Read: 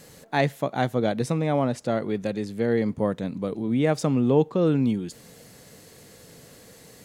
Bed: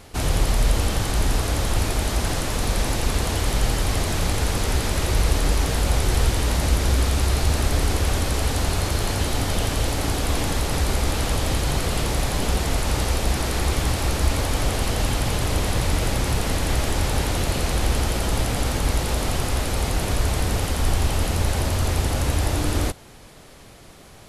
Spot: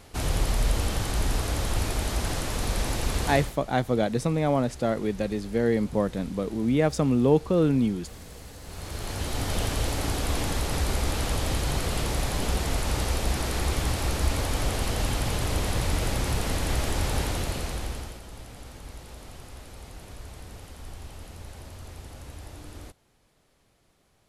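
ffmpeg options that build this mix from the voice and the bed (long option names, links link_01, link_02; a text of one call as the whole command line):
ffmpeg -i stem1.wav -i stem2.wav -filter_complex "[0:a]adelay=2950,volume=-0.5dB[link_01];[1:a]volume=13.5dB,afade=type=out:start_time=3.3:duration=0.25:silence=0.125893,afade=type=in:start_time=8.63:duration=0.94:silence=0.11885,afade=type=out:start_time=17.2:duration=1.01:silence=0.158489[link_02];[link_01][link_02]amix=inputs=2:normalize=0" out.wav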